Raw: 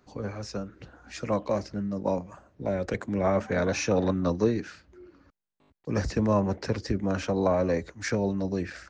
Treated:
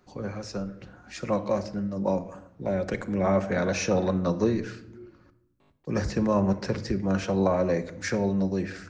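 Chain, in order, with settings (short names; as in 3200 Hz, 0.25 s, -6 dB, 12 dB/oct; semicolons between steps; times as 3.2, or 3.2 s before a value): shoebox room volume 2400 m³, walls furnished, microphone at 0.98 m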